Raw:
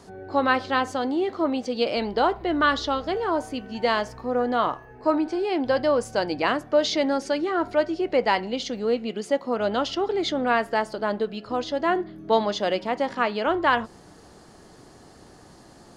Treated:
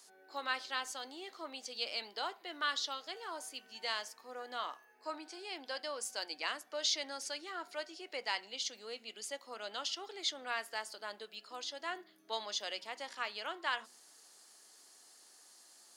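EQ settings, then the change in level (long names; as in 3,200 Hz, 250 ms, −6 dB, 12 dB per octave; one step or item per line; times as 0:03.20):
high-pass filter 190 Hz 24 dB per octave
first difference
mains-hum notches 60/120/180/240 Hz
0.0 dB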